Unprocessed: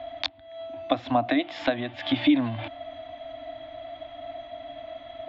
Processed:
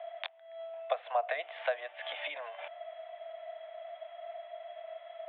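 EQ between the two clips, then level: rippled Chebyshev high-pass 440 Hz, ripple 3 dB; steep low-pass 3400 Hz 48 dB/oct; air absorption 96 m; -4.5 dB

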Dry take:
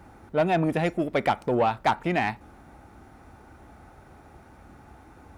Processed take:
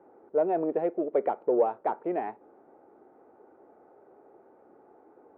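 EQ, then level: ladder band-pass 490 Hz, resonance 55%; air absorption 190 m; +8.0 dB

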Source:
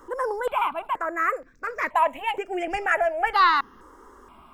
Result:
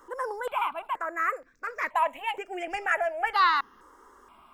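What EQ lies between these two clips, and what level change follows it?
low shelf 430 Hz -9.5 dB; -2.5 dB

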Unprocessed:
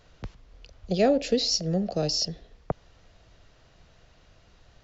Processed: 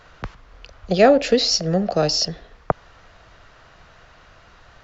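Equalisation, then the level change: bell 1300 Hz +12 dB 1.8 oct; +4.5 dB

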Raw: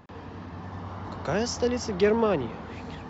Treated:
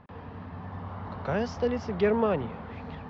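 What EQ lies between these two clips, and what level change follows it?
air absorption 270 m; bell 330 Hz -9 dB 0.35 oct; 0.0 dB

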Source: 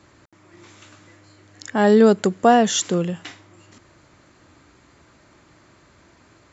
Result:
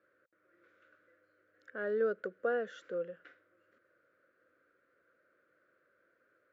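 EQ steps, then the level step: double band-pass 870 Hz, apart 1.5 oct; air absorption 92 m; -8.0 dB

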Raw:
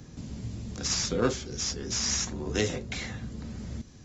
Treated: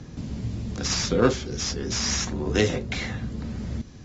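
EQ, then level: air absorption 84 m; +6.5 dB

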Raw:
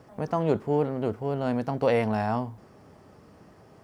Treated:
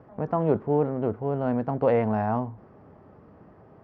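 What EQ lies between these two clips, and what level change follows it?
LPF 1500 Hz 12 dB/oct; +1.5 dB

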